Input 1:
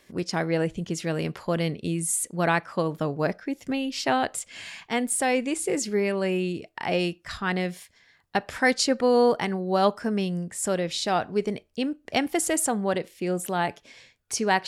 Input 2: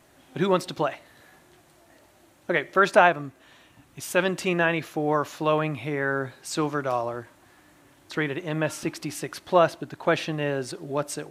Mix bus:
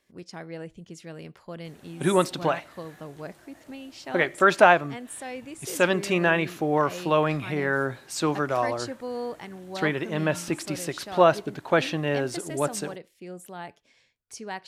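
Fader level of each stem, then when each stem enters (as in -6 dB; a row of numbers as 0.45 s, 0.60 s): -13.0 dB, +1.0 dB; 0.00 s, 1.65 s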